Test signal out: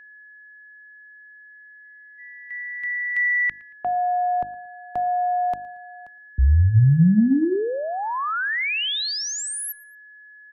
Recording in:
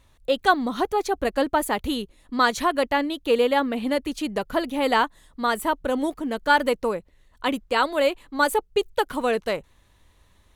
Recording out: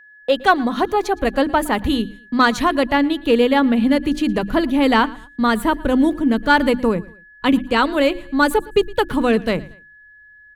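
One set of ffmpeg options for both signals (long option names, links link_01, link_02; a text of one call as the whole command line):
ffmpeg -i in.wav -filter_complex "[0:a]bandreject=frequency=50:width_type=h:width=6,bandreject=frequency=100:width_type=h:width=6,bandreject=frequency=150:width_type=h:width=6,bandreject=frequency=200:width_type=h:width=6,bandreject=frequency=250:width_type=h:width=6,bandreject=frequency=300:width_type=h:width=6,bandreject=frequency=350:width_type=h:width=6,agate=range=-25dB:threshold=-44dB:ratio=16:detection=peak,asubboost=boost=6:cutoff=230,acrossover=split=140|4200[link_01][link_02][link_03];[link_02]acontrast=61[link_04];[link_01][link_04][link_03]amix=inputs=3:normalize=0,aeval=exprs='val(0)+0.00631*sin(2*PI*1700*n/s)':channel_layout=same,asplit=2[link_05][link_06];[link_06]aecho=0:1:114|228:0.0794|0.0278[link_07];[link_05][link_07]amix=inputs=2:normalize=0" out.wav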